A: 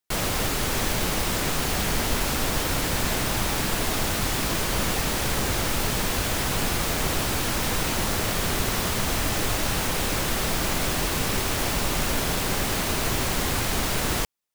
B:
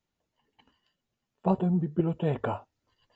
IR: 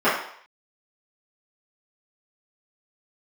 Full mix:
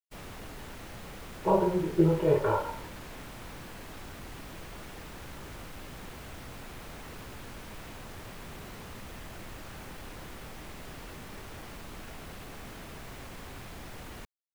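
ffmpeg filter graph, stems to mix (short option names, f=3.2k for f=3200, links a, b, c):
-filter_complex "[0:a]aeval=exprs='0.0596*(abs(mod(val(0)/0.0596+3,4)-2)-1)':c=same,volume=-13dB[a];[1:a]flanger=delay=16:depth=5.6:speed=1.1,aecho=1:1:2.1:0.98,volume=-2dB,asplit=2[b][c];[c]volume=-17.5dB[d];[2:a]atrim=start_sample=2205[e];[d][e]afir=irnorm=-1:irlink=0[f];[a][b][f]amix=inputs=3:normalize=0,agate=range=-39dB:threshold=-43dB:ratio=16:detection=peak,acrossover=split=3000[g][h];[h]acompressor=threshold=-52dB:ratio=4:attack=1:release=60[i];[g][i]amix=inputs=2:normalize=0,lowshelf=f=320:g=4"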